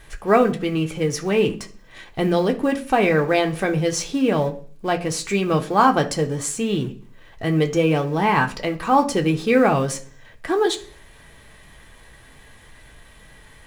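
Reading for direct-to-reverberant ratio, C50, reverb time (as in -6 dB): 2.0 dB, 15.0 dB, 0.45 s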